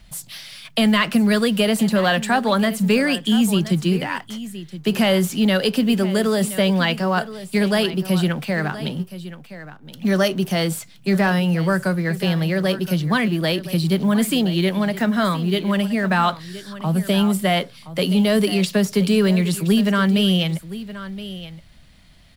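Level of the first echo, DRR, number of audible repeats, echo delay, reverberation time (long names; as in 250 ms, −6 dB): −14.5 dB, no reverb audible, 1, 1,021 ms, no reverb audible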